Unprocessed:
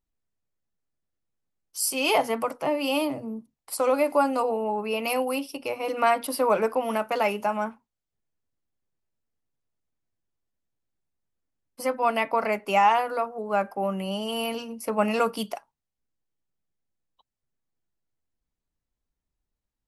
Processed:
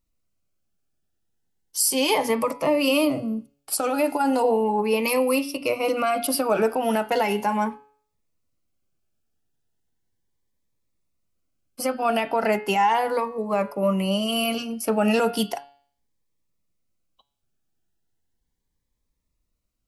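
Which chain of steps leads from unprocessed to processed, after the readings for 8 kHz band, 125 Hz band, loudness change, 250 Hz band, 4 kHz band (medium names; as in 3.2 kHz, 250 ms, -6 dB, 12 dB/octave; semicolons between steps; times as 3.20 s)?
+6.0 dB, no reading, +2.5 dB, +6.0 dB, +4.5 dB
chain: de-hum 141.3 Hz, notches 35; peak limiter -17.5 dBFS, peak gain reduction 8.5 dB; Shepard-style phaser rising 0.36 Hz; trim +7.5 dB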